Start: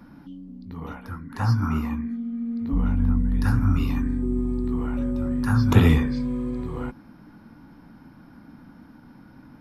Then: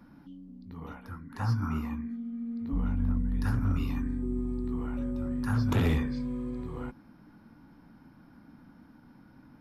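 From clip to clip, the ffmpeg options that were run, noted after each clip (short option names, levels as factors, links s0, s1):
-af "volume=5.01,asoftclip=hard,volume=0.2,volume=0.447"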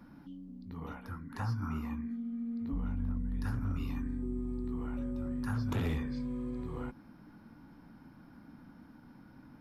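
-af "acompressor=threshold=0.0158:ratio=2"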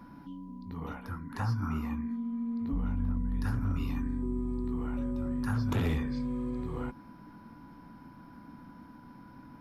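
-af "aeval=exprs='val(0)+0.001*sin(2*PI*990*n/s)':c=same,volume=1.5"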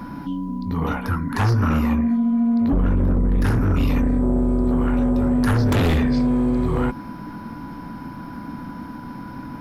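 -af "aeval=exprs='0.0841*sin(PI/2*2*val(0)/0.0841)':c=same,volume=2.24"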